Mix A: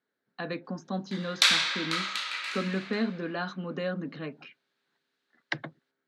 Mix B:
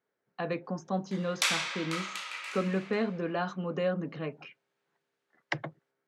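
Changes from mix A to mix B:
speech +4.5 dB
master: add graphic EQ with 15 bands 250 Hz −10 dB, 1,600 Hz −7 dB, 4,000 Hz −11 dB

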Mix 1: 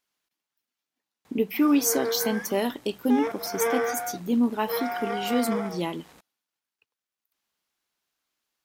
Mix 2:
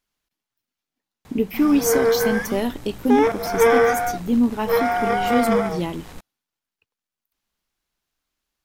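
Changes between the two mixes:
background +9.0 dB
master: remove high-pass filter 330 Hz 6 dB per octave

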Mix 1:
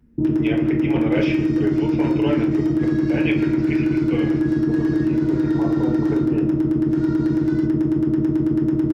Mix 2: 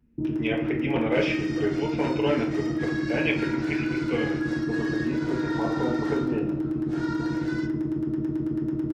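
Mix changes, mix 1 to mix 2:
first sound −8.5 dB
second sound +4.5 dB

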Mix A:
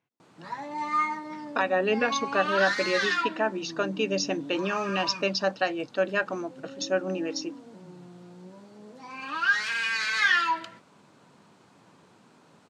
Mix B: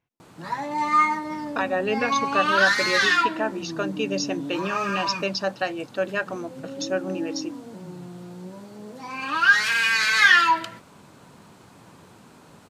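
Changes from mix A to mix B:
background +7.0 dB
master: remove band-pass filter 140–7,700 Hz

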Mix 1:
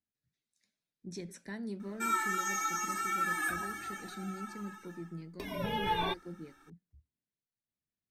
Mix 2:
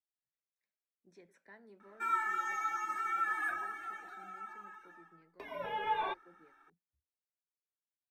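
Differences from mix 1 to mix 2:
speech −7.5 dB
master: add three-way crossover with the lows and the highs turned down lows −19 dB, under 430 Hz, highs −18 dB, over 2,400 Hz

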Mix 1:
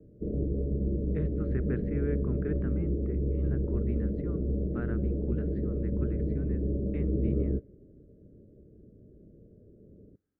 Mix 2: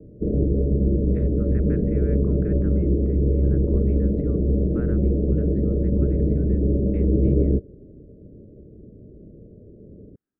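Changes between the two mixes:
background +10.5 dB
reverb: off

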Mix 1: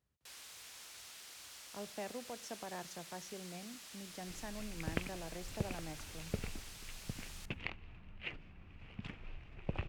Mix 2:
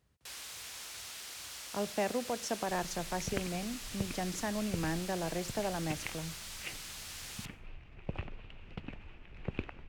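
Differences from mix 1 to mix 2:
speech +11.0 dB
first sound +7.5 dB
second sound: entry −1.60 s

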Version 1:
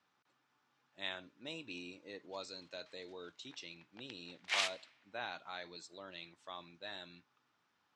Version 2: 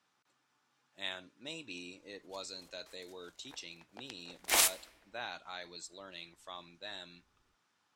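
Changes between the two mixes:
background: remove resonant band-pass 2,800 Hz, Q 0.86
master: remove high-frequency loss of the air 100 metres

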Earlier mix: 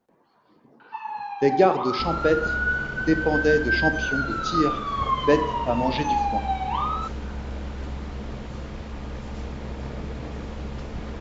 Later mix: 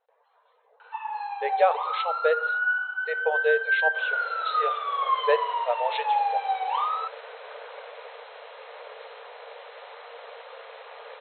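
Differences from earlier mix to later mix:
speech: send −7.5 dB
second sound: entry +1.95 s
master: add linear-phase brick-wall band-pass 430–4,200 Hz

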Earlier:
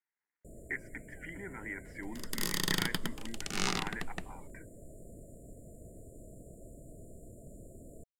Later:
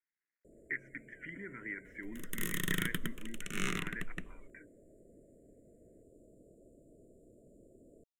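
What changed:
first sound: add three-way crossover with the lows and the highs turned down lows −16 dB, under 270 Hz, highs −20 dB, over 5,500 Hz
master: add phaser with its sweep stopped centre 2,000 Hz, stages 4

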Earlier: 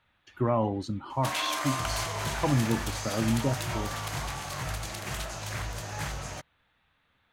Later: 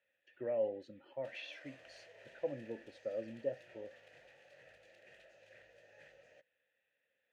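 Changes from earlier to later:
background −11.5 dB
master: add formant filter e

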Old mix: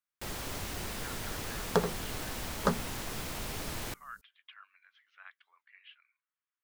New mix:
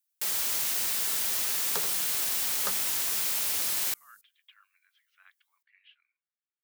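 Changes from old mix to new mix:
speech −10.5 dB
second sound −8.0 dB
master: add spectral tilt +4.5 dB per octave

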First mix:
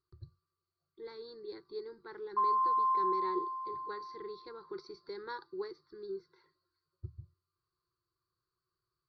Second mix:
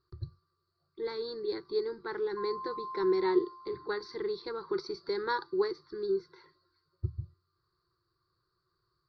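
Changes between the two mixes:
speech +10.5 dB
background −11.5 dB

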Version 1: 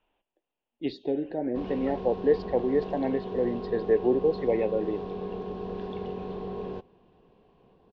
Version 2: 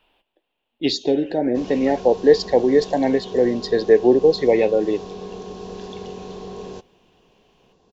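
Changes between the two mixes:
speech +8.5 dB
master: remove high-frequency loss of the air 410 metres

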